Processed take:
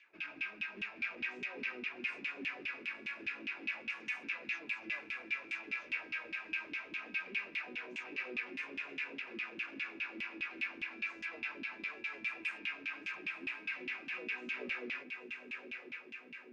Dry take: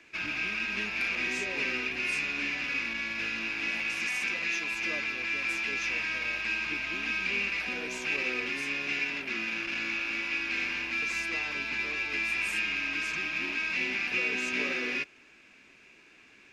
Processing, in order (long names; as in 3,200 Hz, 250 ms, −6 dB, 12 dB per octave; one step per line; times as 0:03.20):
feedback delay with all-pass diffusion 983 ms, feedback 57%, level −7 dB
auto-filter band-pass saw down 4.9 Hz 200–3,200 Hz
level −3 dB